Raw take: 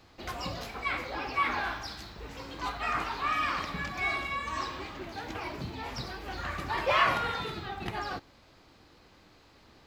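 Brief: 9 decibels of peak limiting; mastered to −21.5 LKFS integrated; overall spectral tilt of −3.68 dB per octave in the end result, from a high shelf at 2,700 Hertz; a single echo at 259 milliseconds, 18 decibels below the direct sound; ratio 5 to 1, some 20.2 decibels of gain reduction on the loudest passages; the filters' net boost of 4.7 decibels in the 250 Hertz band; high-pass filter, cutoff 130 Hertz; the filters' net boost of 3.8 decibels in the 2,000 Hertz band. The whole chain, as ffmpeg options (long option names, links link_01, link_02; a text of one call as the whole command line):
ffmpeg -i in.wav -af "highpass=130,equalizer=frequency=250:width_type=o:gain=6.5,equalizer=frequency=2000:width_type=o:gain=3,highshelf=frequency=2700:gain=3.5,acompressor=threshold=-42dB:ratio=5,alimiter=level_in=13.5dB:limit=-24dB:level=0:latency=1,volume=-13.5dB,aecho=1:1:259:0.126,volume=24.5dB" out.wav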